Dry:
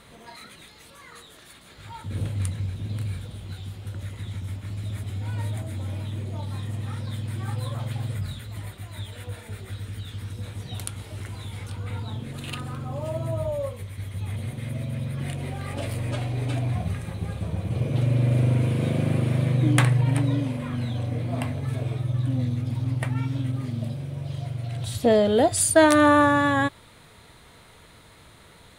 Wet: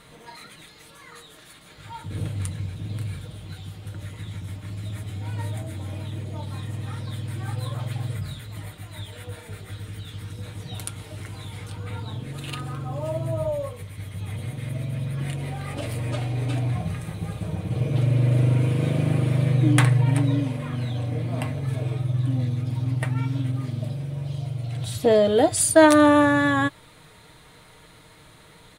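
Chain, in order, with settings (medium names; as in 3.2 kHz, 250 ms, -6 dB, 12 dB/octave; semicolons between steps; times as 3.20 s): 24.30–24.72 s: peaking EQ 1.7 kHz -6 dB; comb 6.5 ms, depth 42%; 17.01–17.56 s: treble shelf 10 kHz +5 dB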